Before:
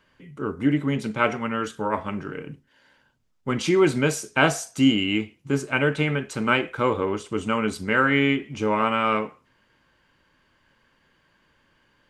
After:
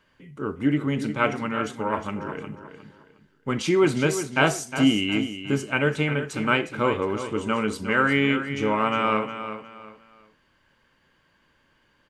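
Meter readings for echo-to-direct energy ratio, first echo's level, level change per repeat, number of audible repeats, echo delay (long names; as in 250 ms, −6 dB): −10.0 dB, −10.5 dB, −10.5 dB, 3, 359 ms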